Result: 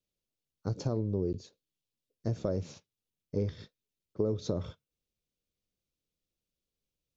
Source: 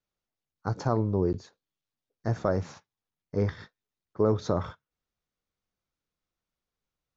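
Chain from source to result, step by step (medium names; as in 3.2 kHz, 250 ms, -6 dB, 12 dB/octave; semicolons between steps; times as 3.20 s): high-order bell 1.2 kHz -13 dB; compression 3:1, threshold -28 dBFS, peak gain reduction 7 dB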